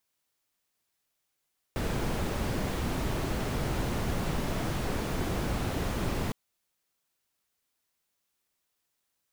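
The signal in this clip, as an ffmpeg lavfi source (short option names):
-f lavfi -i "anoisesrc=c=brown:a=0.148:d=4.56:r=44100:seed=1"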